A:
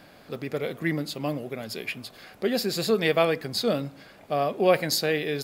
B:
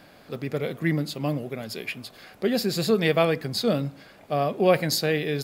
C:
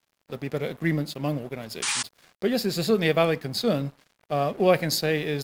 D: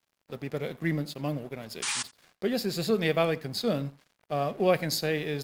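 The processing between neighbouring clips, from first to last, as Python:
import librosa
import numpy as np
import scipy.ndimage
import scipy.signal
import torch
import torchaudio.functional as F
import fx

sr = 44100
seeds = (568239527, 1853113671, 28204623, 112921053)

y1 = fx.dynamic_eq(x, sr, hz=140.0, q=0.87, threshold_db=-40.0, ratio=4.0, max_db=6)
y2 = np.sign(y1) * np.maximum(np.abs(y1) - 10.0 ** (-45.0 / 20.0), 0.0)
y2 = fx.spec_paint(y2, sr, seeds[0], shape='noise', start_s=1.82, length_s=0.21, low_hz=790.0, high_hz=9800.0, level_db=-27.0)
y3 = y2 + 10.0 ** (-22.5 / 20.0) * np.pad(y2, (int(86 * sr / 1000.0), 0))[:len(y2)]
y3 = y3 * librosa.db_to_amplitude(-4.0)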